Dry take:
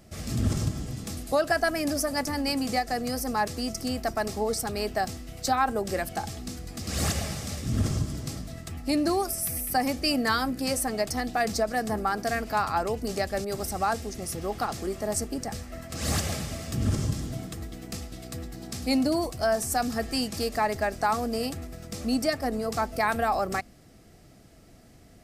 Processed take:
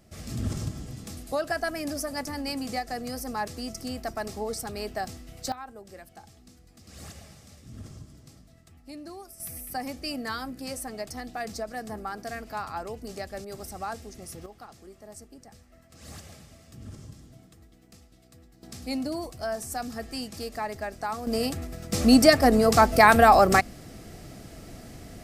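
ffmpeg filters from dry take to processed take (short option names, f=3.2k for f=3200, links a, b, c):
-af "asetnsamples=n=441:p=0,asendcmd='5.52 volume volume -17dB;9.4 volume volume -8dB;14.46 volume volume -17dB;18.63 volume volume -6.5dB;21.27 volume volume 2.5dB;21.93 volume volume 10dB',volume=-4.5dB"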